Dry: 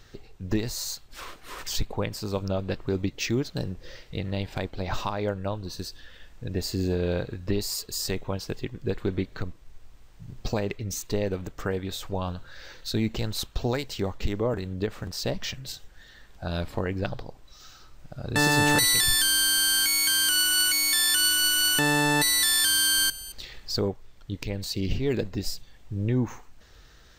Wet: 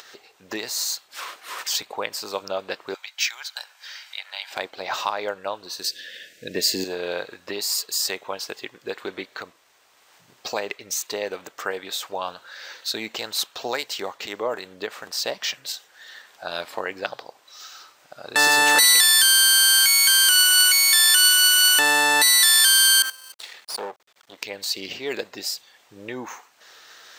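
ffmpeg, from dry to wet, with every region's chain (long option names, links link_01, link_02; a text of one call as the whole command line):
ffmpeg -i in.wav -filter_complex "[0:a]asettb=1/sr,asplit=3[link_01][link_02][link_03];[link_01]atrim=end=2.944[link_04];[link_02]atrim=start=2.94:end=4.51,asetpts=PTS-STARTPTS,afade=type=in:duration=0.004:curve=qsin,afade=type=out:start_time=1.566:duration=0.004:curve=qsin,highpass=frequency=970:width=0.5412,highpass=frequency=970:width=1.3066,aecho=1:1:1.3:0.39,atrim=end_sample=69237[link_05];[link_03]atrim=start=4.506[link_06];[link_04][link_05]acrossfade=duration=0.004:curve1=hsin:curve2=qsin[link_07];[link_07][link_06]acrossfade=duration=0.004:curve1=qsin:curve2=hsin,asettb=1/sr,asplit=3[link_08][link_09][link_10];[link_08]atrim=end=5.844[link_11];[link_09]atrim=start=5.84:end=6.84,asetpts=PTS-STARTPTS,afade=type=in:duration=0.004:curve=qsin,afade=type=out:start_time=0.996:duration=0.004:curve=qsin,asuperstop=centerf=1000:order=8:qfactor=0.99,equalizer=frequency=190:width_type=o:width=1.5:gain=5.5,acontrast=44[link_12];[link_10]atrim=start=6.836[link_13];[link_11][link_12]acrossfade=duration=0.004:curve1=hsin:curve2=qsin[link_14];[link_14][link_13]acrossfade=duration=0.004:curve1=qsin:curve2=hsin,asettb=1/sr,asplit=3[link_15][link_16][link_17];[link_15]atrim=end=23.024[link_18];[link_16]atrim=start=23.02:end=24.38,asetpts=PTS-STARTPTS,afade=type=in:duration=0.004:curve=qsin,afade=type=out:start_time=1.356:duration=0.004:curve=qsin,aeval=exprs='max(val(0),0)':channel_layout=same,adynamicequalizer=threshold=0.00501:dfrequency=2300:dqfactor=0.7:tfrequency=2300:tqfactor=0.7:attack=5:release=100:ratio=0.375:range=4:mode=cutabove:tftype=highshelf[link_19];[link_17]atrim=start=24.376[link_20];[link_18][link_19]acrossfade=duration=0.004:curve1=hsin:curve2=qsin[link_21];[link_21][link_20]acrossfade=duration=0.004:curve1=qsin:curve2=hsin,acompressor=mode=upward:threshold=-41dB:ratio=2.5,highpass=680,volume=7dB" out.wav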